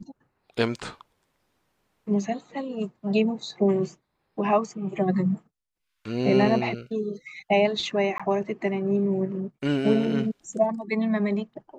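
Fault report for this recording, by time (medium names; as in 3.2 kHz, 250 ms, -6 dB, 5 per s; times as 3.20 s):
8.18–8.20 s: dropout 16 ms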